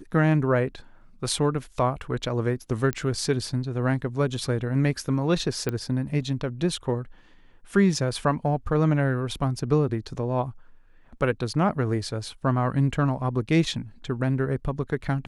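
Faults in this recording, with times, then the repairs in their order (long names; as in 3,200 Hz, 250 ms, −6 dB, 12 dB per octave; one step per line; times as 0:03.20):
0:02.93: click −14 dBFS
0:05.69: click −14 dBFS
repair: click removal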